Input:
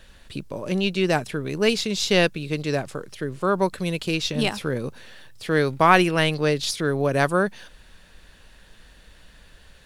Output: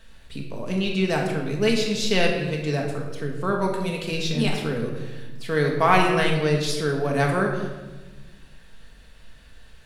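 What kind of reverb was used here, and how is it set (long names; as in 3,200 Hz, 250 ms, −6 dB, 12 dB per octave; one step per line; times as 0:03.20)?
rectangular room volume 810 cubic metres, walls mixed, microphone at 1.6 metres
level −4.5 dB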